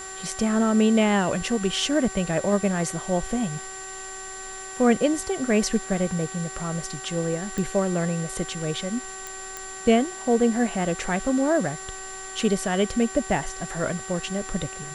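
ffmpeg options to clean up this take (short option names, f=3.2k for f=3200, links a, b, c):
-af "adeclick=t=4,bandreject=f=381.2:t=h:w=4,bandreject=f=762.4:t=h:w=4,bandreject=f=1.1436k:t=h:w=4,bandreject=f=1.5248k:t=h:w=4,bandreject=f=1.906k:t=h:w=4,bandreject=f=7.3k:w=30,afwtdn=0.0079"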